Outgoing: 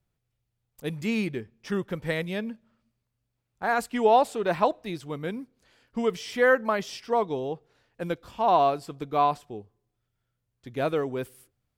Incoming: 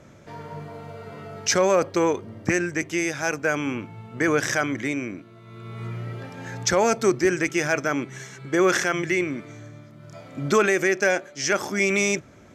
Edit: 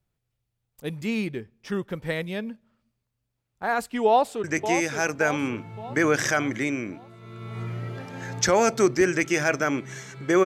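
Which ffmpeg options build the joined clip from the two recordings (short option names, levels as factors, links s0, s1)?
-filter_complex "[0:a]apad=whole_dur=10.45,atrim=end=10.45,atrim=end=4.442[s0];[1:a]atrim=start=2.678:end=8.69[s1];[s0][s1]acrossfade=d=0.004:c1=hsin:c2=hsin,asplit=2[s2][s3];[s3]afade=t=in:st=4.06:d=0.01,afade=t=out:st=4.44:d=0.01,aecho=0:1:570|1140|1710|2280|2850|3420:0.398107|0.199054|0.0995268|0.0497634|0.0248817|0.0124408[s4];[s2][s4]amix=inputs=2:normalize=0"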